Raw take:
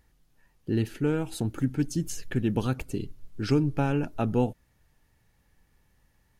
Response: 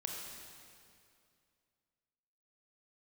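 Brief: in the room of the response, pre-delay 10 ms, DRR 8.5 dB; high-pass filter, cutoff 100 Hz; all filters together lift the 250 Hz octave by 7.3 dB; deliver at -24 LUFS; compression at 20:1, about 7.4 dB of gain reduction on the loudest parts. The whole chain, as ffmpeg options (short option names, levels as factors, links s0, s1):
-filter_complex "[0:a]highpass=100,equalizer=f=250:t=o:g=9,acompressor=threshold=0.1:ratio=20,asplit=2[s0][s1];[1:a]atrim=start_sample=2205,adelay=10[s2];[s1][s2]afir=irnorm=-1:irlink=0,volume=0.355[s3];[s0][s3]amix=inputs=2:normalize=0,volume=1.5"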